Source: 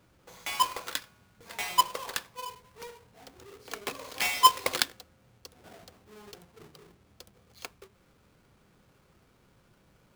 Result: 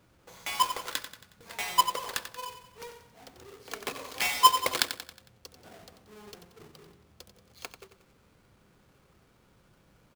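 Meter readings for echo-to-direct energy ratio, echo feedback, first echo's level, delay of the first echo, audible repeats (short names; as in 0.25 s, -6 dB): -9.5 dB, 48%, -10.5 dB, 91 ms, 4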